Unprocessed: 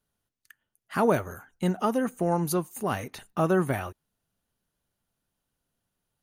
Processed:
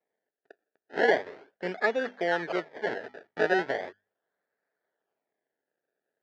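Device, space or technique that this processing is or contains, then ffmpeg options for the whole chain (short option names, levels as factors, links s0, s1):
circuit-bent sampling toy: -af "bandreject=f=50:t=h:w=6,bandreject=f=100:t=h:w=6,bandreject=f=150:t=h:w=6,bandreject=f=200:t=h:w=6,bandreject=f=250:t=h:w=6,acrusher=samples=28:mix=1:aa=0.000001:lfo=1:lforange=28:lforate=0.38,highpass=420,equalizer=f=430:t=q:w=4:g=7,equalizer=f=650:t=q:w=4:g=4,equalizer=f=1100:t=q:w=4:g=-8,equalizer=f=1700:t=q:w=4:g=10,equalizer=f=2700:t=q:w=4:g=-6,equalizer=f=3800:t=q:w=4:g=-5,lowpass=f=4100:w=0.5412,lowpass=f=4100:w=1.3066,volume=0.841"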